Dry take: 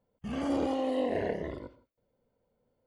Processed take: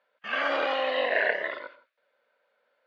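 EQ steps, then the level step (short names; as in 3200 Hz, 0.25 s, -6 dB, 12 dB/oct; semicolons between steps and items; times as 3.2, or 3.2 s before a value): speaker cabinet 500–4400 Hz, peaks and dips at 590 Hz +9 dB, 1200 Hz +4 dB, 1600 Hz +7 dB, 2500 Hz +6 dB, 3800 Hz +5 dB; bell 1600 Hz +13 dB 1.5 oct; high shelf 2100 Hz +11 dB; -2.5 dB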